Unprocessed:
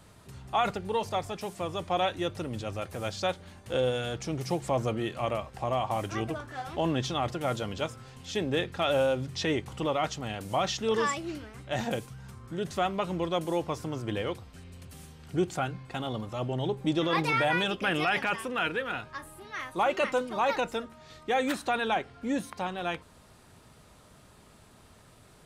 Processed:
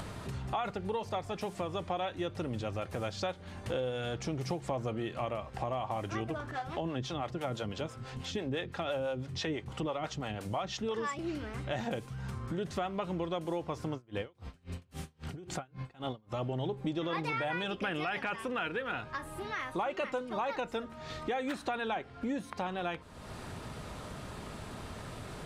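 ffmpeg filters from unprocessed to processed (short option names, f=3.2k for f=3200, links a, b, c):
-filter_complex "[0:a]asettb=1/sr,asplit=3[a][b][c];[a]atrim=end=6.514[d];[b]atrim=start=6.51:end=11.19,asetpts=PTS-STARTPTS,afade=t=in:d=0.004:c=qsin,afade=t=out:st=4.676:d=0.004:c=qsin,acrossover=split=440[e][f];[e]aeval=exprs='val(0)*(1-0.7/2+0.7/2*cos(2*PI*6*n/s))':c=same[g];[f]aeval=exprs='val(0)*(1-0.7/2-0.7/2*cos(2*PI*6*n/s))':c=same[h];[g][h]amix=inputs=2:normalize=0[i];[c]atrim=start=11.186[j];[d][i]acrossfade=d=0.004:c1=hsin:c2=qsin[k];[k][j]acrossfade=d=0.004:c1=qsin:c2=hsin,asettb=1/sr,asplit=3[l][m][n];[l]atrim=end=13.934[o];[m]atrim=start=13.93:end=16.36,asetpts=PTS-STARTPTS,afade=t=in:d=0.004:c=qsin,afade=t=out:st=2.426:d=0.004:c=qsin,aeval=exprs='val(0)*pow(10,-36*(0.5-0.5*cos(2*PI*3.7*n/s))/20)':c=same[p];[n]atrim=start=16.356[q];[o][p]acrossfade=d=0.004:c1=hsin:c2=qsin[r];[r][q]acrossfade=d=0.004:c1=qsin:c2=hsin,acompressor=mode=upward:threshold=-30dB:ratio=2.5,lowpass=f=3.9k:p=1,acompressor=threshold=-31dB:ratio=6"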